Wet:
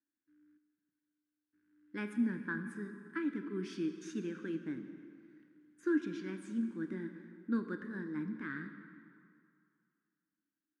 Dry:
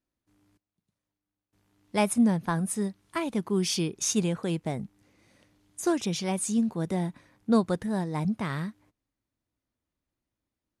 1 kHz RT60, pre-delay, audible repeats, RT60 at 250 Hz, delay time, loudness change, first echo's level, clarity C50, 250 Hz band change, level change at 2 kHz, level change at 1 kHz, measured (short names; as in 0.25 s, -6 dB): 2.4 s, 18 ms, none, 2.2 s, none, -10.5 dB, none, 8.0 dB, -9.0 dB, -4.0 dB, -17.5 dB